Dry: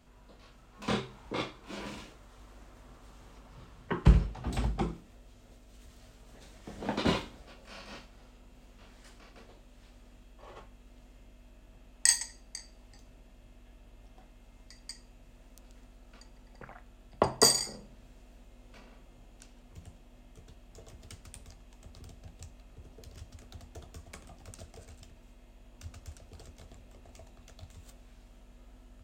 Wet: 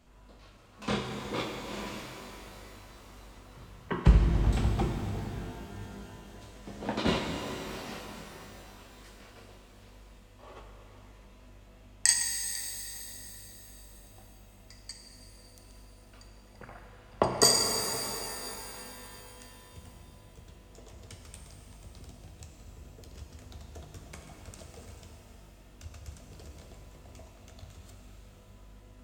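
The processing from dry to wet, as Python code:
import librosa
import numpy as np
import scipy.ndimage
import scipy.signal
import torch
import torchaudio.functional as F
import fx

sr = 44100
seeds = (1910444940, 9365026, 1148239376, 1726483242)

y = fx.wow_flutter(x, sr, seeds[0], rate_hz=2.1, depth_cents=29.0)
y = fx.rev_shimmer(y, sr, seeds[1], rt60_s=3.6, semitones=12, shimmer_db=-8, drr_db=3.0)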